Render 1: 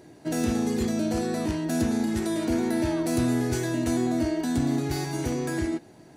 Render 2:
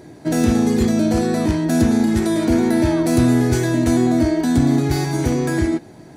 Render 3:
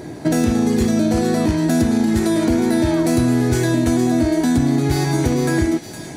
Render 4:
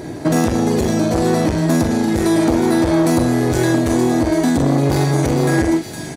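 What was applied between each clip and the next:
bass and treble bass +3 dB, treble −2 dB; notch filter 2,800 Hz, Q 15; level +8 dB
downward compressor 3 to 1, threshold −25 dBFS, peak gain reduction 11 dB; delay with a high-pass on its return 462 ms, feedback 57%, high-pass 2,600 Hz, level −7 dB; level +8.5 dB
double-tracking delay 43 ms −7 dB; saturating transformer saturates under 600 Hz; level +3 dB

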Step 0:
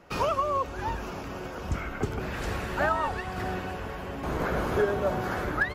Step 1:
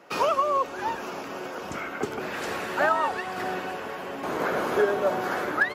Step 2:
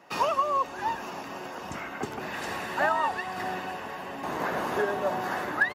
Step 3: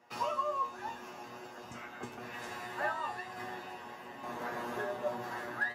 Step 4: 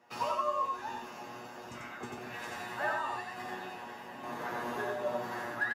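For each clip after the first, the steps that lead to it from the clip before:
high-pass filter 280 Hz 12 dB per octave; level +3.5 dB
comb filter 1.1 ms, depth 39%; level −2.5 dB
tuned comb filter 120 Hz, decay 0.27 s, harmonics all, mix 90%
single-tap delay 91 ms −3 dB

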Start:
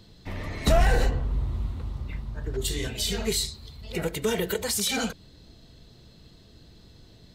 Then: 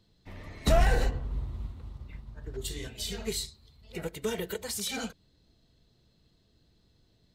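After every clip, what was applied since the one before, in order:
expander for the loud parts 1.5 to 1, over −41 dBFS
level −2 dB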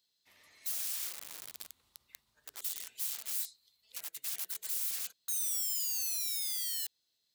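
sound drawn into the spectrogram fall, 0:05.28–0:06.87, 580–1,300 Hz −25 dBFS
wrap-around overflow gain 32 dB
first difference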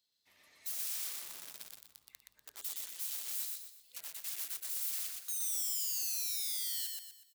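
repeating echo 122 ms, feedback 38%, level −3 dB
level −3.5 dB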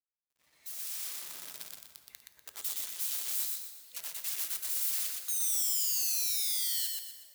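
fade in at the beginning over 1.73 s
bit reduction 12 bits
dense smooth reverb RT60 2.3 s, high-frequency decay 0.65×, DRR 10 dB
level +5 dB

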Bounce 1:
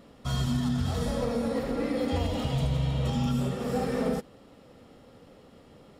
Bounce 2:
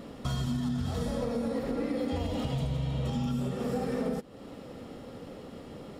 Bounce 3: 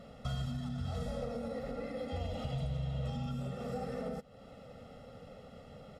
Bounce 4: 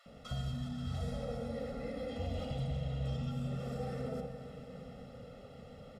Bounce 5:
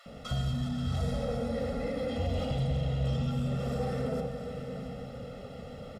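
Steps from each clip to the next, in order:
parametric band 280 Hz +3.5 dB 2 octaves; downward compressor 3 to 1, threshold −39 dBFS, peak gain reduction 13.5 dB; level +6.5 dB
high-shelf EQ 8,200 Hz −7.5 dB; comb filter 1.5 ms, depth 84%; level −8.5 dB
multiband delay without the direct sound highs, lows 60 ms, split 940 Hz; convolution reverb RT60 5.3 s, pre-delay 117 ms, DRR 6.5 dB; level −1 dB
single-tap delay 678 ms −13.5 dB; in parallel at −4.5 dB: soft clipping −36.5 dBFS, distortion −12 dB; on the sum: level +4 dB

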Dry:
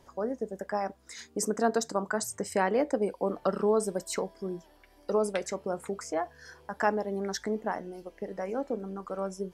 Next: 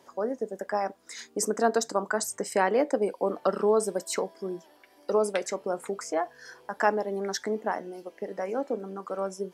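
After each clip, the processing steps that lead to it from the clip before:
high-pass filter 240 Hz 12 dB per octave
level +3 dB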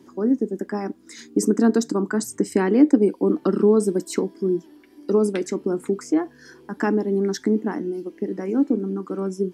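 low shelf with overshoot 430 Hz +11 dB, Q 3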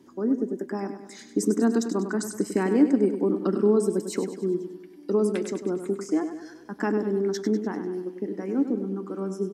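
repeating echo 99 ms, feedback 52%, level −9.5 dB
level −4.5 dB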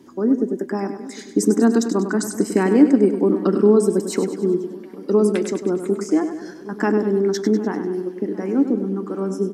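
delay with a low-pass on its return 756 ms, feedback 57%, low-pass 1,400 Hz, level −19 dB
level +6.5 dB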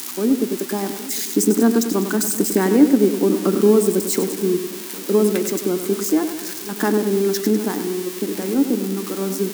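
spike at every zero crossing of −16.5 dBFS

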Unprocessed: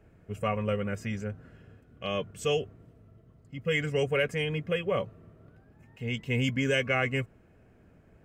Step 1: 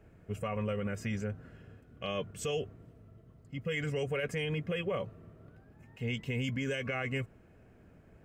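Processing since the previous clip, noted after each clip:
brickwall limiter −25.5 dBFS, peak gain reduction 11 dB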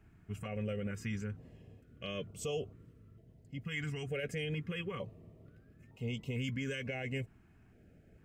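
notch on a step sequencer 2.2 Hz 530–1,700 Hz
level −2.5 dB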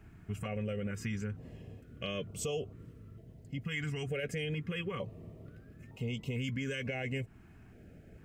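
downward compressor 2 to 1, threshold −44 dBFS, peak gain reduction 6.5 dB
level +7 dB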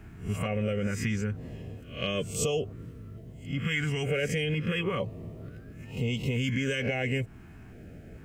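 peak hold with a rise ahead of every peak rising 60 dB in 0.38 s
level +6.5 dB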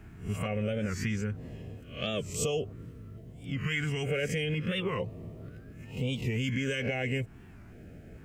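wow of a warped record 45 rpm, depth 160 cents
level −2 dB

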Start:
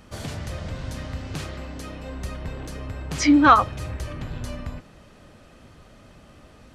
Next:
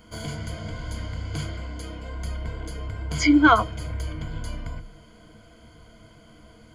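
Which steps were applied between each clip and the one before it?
EQ curve with evenly spaced ripples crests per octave 1.8, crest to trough 16 dB
level −3.5 dB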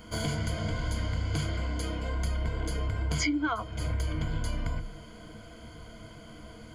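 downward compressor 16 to 1, threshold −29 dBFS, peak gain reduction 19.5 dB
level +3.5 dB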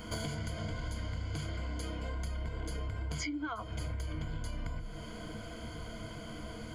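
downward compressor 5 to 1, threshold −39 dBFS, peak gain reduction 13 dB
level +3.5 dB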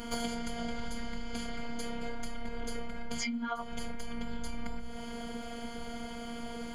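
phases set to zero 234 Hz
level +5.5 dB

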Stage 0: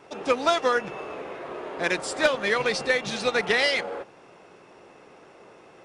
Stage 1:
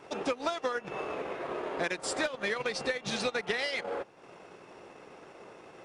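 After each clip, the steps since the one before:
downward compressor 16 to 1, threshold −28 dBFS, peak gain reduction 13.5 dB
transient designer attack +1 dB, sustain −7 dB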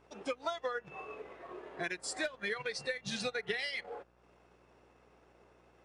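hum with harmonics 60 Hz, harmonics 29, −55 dBFS −4 dB per octave
noise reduction from a noise print of the clip's start 11 dB
level −3.5 dB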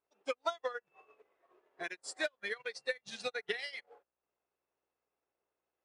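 bass and treble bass −12 dB, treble +1 dB
expander for the loud parts 2.5 to 1, over −50 dBFS
level +3.5 dB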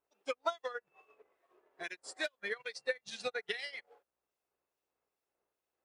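two-band tremolo in antiphase 2.4 Hz, depth 50%, crossover 2,200 Hz
level +2 dB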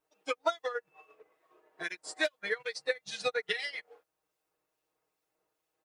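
comb filter 6.4 ms, depth 78%
level +3 dB

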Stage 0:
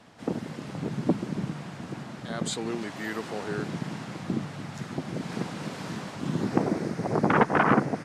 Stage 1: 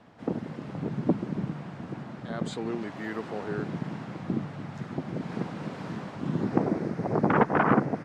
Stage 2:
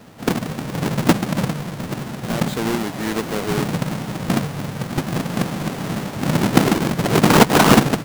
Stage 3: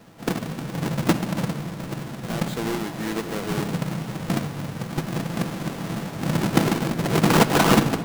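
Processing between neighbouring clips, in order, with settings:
low-pass filter 1,600 Hz 6 dB per octave
each half-wave held at its own peak; level +6.5 dB
rectangular room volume 3,800 cubic metres, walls mixed, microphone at 0.72 metres; level −5.5 dB

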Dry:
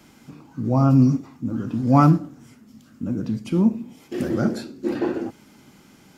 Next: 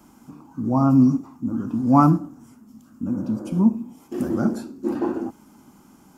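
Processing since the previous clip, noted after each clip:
healed spectral selection 0:03.15–0:03.57, 290–2,100 Hz before
graphic EQ with 10 bands 125 Hz −7 dB, 250 Hz +3 dB, 500 Hz −7 dB, 1,000 Hz +6 dB, 2,000 Hz −11 dB, 4,000 Hz −10 dB
level +1.5 dB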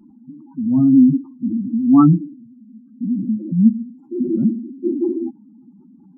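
expanding power law on the bin magnitudes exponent 3.2
level +5 dB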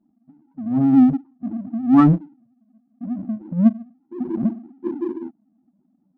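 power curve on the samples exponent 1.4
one half of a high-frequency compander decoder only

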